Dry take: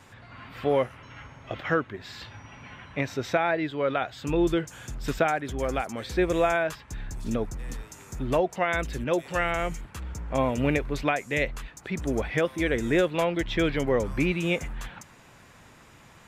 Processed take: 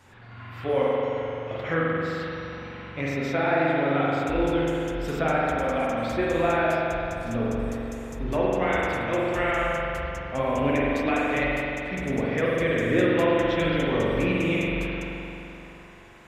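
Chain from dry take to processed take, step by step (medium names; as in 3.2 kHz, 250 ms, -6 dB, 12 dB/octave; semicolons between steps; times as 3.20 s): wow and flutter 25 cents; flange 1.6 Hz, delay 1.9 ms, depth 8.4 ms, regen -52%; spring tank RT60 3.1 s, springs 43 ms, chirp 75 ms, DRR -6 dB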